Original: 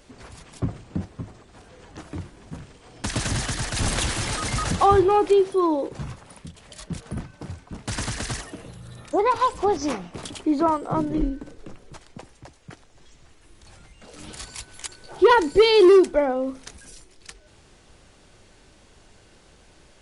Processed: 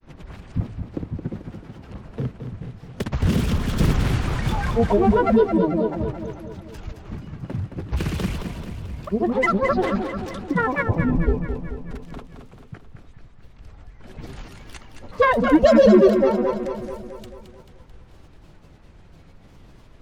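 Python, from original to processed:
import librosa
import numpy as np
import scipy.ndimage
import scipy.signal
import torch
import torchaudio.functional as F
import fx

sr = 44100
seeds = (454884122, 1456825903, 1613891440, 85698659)

p1 = fx.bass_treble(x, sr, bass_db=9, treble_db=-13)
p2 = fx.granulator(p1, sr, seeds[0], grain_ms=100.0, per_s=20.0, spray_ms=100.0, spread_st=12)
y = p2 + fx.echo_feedback(p2, sr, ms=219, feedback_pct=57, wet_db=-8.0, dry=0)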